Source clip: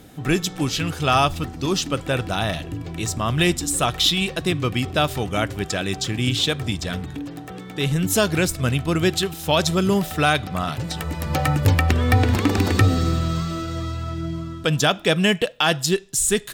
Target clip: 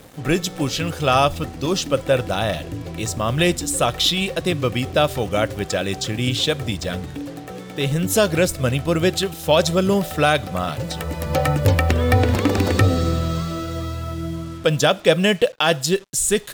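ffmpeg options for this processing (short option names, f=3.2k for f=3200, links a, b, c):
-af "equalizer=f=540:w=3.6:g=9.5,acrusher=bits=6:mix=0:aa=0.5"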